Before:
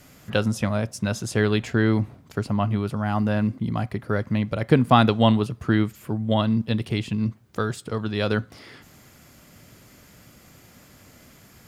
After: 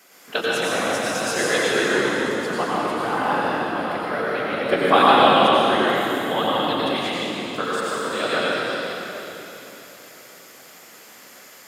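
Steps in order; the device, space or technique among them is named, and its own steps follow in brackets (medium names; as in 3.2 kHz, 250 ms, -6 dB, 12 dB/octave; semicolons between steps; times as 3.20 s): whispering ghost (whisper effect; high-pass 520 Hz 12 dB/octave; reverberation RT60 3.7 s, pre-delay 83 ms, DRR -7.5 dB); trim +1 dB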